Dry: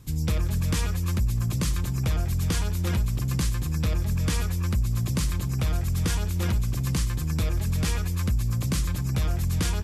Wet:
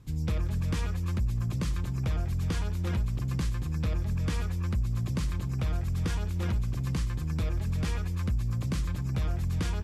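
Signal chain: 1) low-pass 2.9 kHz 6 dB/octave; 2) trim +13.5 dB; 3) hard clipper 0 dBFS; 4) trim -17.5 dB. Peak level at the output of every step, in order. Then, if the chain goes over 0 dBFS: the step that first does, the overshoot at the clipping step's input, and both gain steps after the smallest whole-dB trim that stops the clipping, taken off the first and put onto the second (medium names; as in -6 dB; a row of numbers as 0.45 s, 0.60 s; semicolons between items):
-17.5 dBFS, -4.0 dBFS, -4.0 dBFS, -21.5 dBFS; nothing clips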